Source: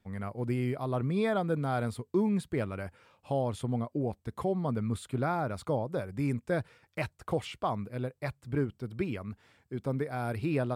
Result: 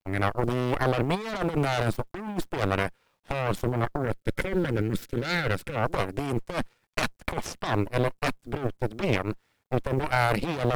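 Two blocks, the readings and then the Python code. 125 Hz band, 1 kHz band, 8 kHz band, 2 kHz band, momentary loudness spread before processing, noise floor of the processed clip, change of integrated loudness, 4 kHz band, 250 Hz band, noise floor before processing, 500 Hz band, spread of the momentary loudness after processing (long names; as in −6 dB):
+4.0 dB, +6.5 dB, +8.5 dB, +10.5 dB, 8 LU, −72 dBFS, +4.5 dB, +11.5 dB, +2.0 dB, −73 dBFS, +4.0 dB, 8 LU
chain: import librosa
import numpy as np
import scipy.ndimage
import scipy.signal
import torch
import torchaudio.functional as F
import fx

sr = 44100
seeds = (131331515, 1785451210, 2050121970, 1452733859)

y = fx.cheby_harmonics(x, sr, harmonics=(5, 6, 7, 8), levels_db=(-18, -38, -12, -10), full_scale_db=-17.5)
y = fx.over_compress(y, sr, threshold_db=-30.0, ratio=-0.5)
y = fx.quant_companded(y, sr, bits=8)
y = fx.spec_box(y, sr, start_s=4.02, length_s=1.73, low_hz=560.0, high_hz=1300.0, gain_db=-10)
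y = F.gain(torch.from_numpy(y), 5.0).numpy()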